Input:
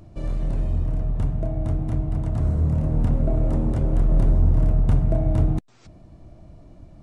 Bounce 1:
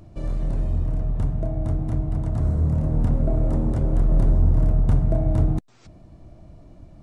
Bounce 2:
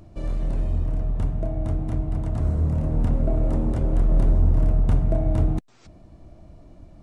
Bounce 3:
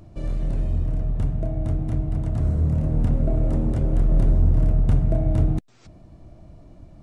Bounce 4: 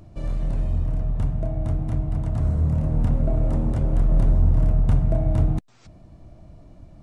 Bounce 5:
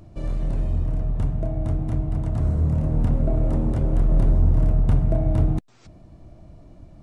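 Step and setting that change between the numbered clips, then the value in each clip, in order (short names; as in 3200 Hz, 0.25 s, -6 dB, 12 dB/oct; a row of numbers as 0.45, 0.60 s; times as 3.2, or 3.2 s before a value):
dynamic EQ, frequency: 2700, 130, 980, 360, 7100 Hz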